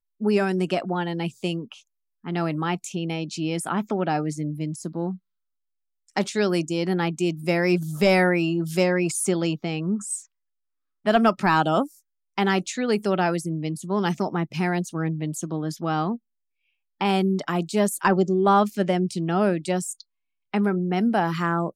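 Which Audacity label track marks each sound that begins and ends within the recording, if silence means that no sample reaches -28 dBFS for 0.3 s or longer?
2.270000	5.130000	sound
6.170000	10.170000	sound
11.070000	11.850000	sound
12.380000	16.160000	sound
17.010000	20.010000	sound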